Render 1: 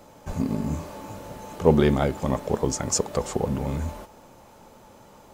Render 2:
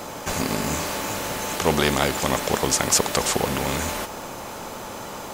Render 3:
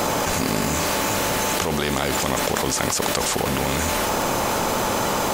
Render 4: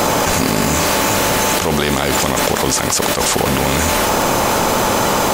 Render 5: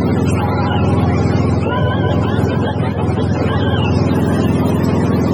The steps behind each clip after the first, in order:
low-shelf EQ 160 Hz −10 dB; every bin compressed towards the loudest bin 2 to 1; level +3.5 dB
envelope flattener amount 100%; level −7 dB
boost into a limiter +8 dB; level −1 dB
frequency axis turned over on the octave scale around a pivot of 470 Hz; echo through a band-pass that steps 311 ms, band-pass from 720 Hz, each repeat 1.4 octaves, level −3 dB; level +1.5 dB

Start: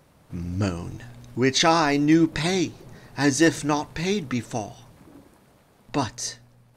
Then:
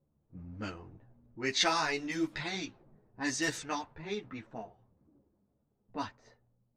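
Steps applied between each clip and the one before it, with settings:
low-pass that shuts in the quiet parts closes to 320 Hz, open at −15 dBFS
tilt shelving filter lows −5.5 dB, about 760 Hz
string-ensemble chorus
level −8.5 dB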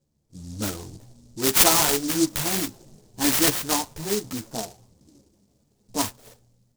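high-shelf EQ 5,400 Hz +7 dB
automatic gain control gain up to 9 dB
short delay modulated by noise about 6,000 Hz, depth 0.16 ms
level +2.5 dB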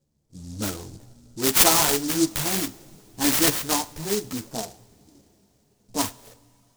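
coupled-rooms reverb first 0.59 s, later 4.6 s, from −18 dB, DRR 17.5 dB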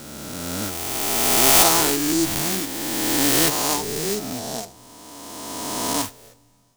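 peak hold with a rise ahead of every peak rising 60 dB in 2.73 s
level −2.5 dB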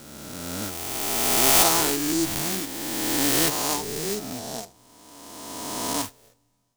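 mu-law and A-law mismatch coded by A
level −3 dB

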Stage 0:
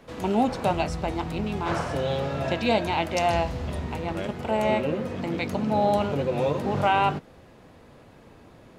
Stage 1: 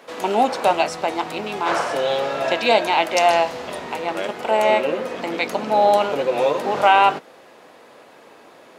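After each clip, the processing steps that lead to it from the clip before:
high-pass filter 450 Hz 12 dB per octave
level +8.5 dB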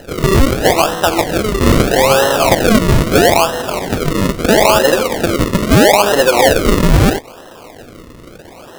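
sample-and-hold swept by an LFO 38×, swing 100% 0.77 Hz
boost into a limiter +12 dB
level −1 dB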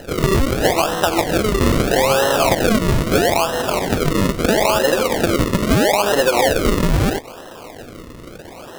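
downward compressor, threshold −12 dBFS, peak gain reduction 7.5 dB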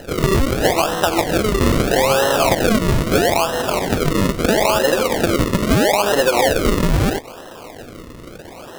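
no processing that can be heard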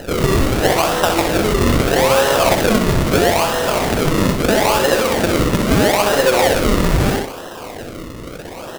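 repeating echo 63 ms, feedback 27%, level −6 dB
in parallel at −4 dB: wrap-around overflow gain 16.5 dB

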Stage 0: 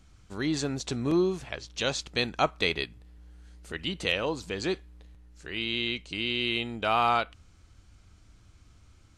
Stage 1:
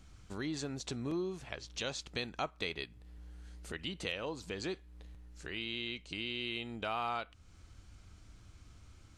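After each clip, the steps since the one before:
downward compressor 2 to 1, threshold −43 dBFS, peak gain reduction 13 dB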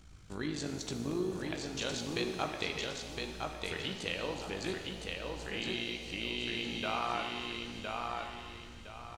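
amplitude modulation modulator 53 Hz, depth 50%
on a send: repeating echo 1,012 ms, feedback 31%, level −3.5 dB
on the sum: reverb with rising layers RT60 1.7 s, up +7 semitones, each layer −8 dB, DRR 5 dB
level +3.5 dB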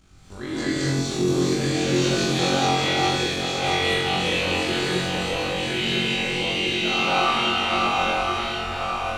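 delay that plays each chunk backwards 524 ms, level −1 dB
flutter between parallel walls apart 3.8 metres, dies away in 0.64 s
reverb whose tail is shaped and stops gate 280 ms rising, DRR −7.5 dB

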